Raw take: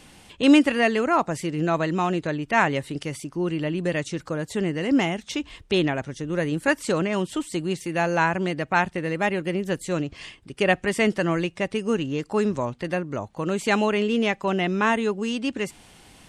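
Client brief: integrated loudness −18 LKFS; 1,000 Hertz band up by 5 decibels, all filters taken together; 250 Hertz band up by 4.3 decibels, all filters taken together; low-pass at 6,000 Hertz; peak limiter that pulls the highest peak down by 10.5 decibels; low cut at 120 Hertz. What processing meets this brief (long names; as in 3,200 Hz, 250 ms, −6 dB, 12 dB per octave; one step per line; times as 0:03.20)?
high-pass filter 120 Hz
low-pass filter 6,000 Hz
parametric band 250 Hz +5.5 dB
parametric band 1,000 Hz +6 dB
level +5.5 dB
brickwall limiter −6.5 dBFS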